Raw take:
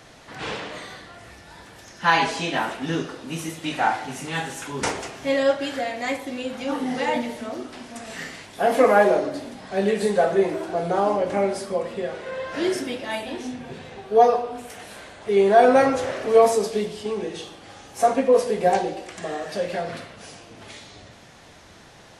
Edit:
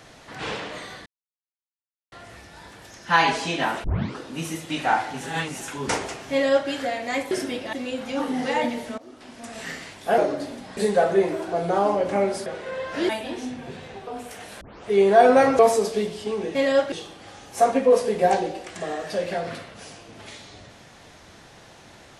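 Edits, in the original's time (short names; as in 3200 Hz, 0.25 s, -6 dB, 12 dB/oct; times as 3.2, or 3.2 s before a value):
1.06 insert silence 1.06 s
2.78 tape start 0.34 s
4.15–4.55 reverse
5.26–5.63 copy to 17.34
7.5–8.08 fade in, from -19.5 dB
8.7–9.12 cut
9.71–9.98 cut
11.67–12.06 cut
12.69–13.11 move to 6.25
14.09–14.46 cut
15 tape start 0.26 s
15.98–16.38 cut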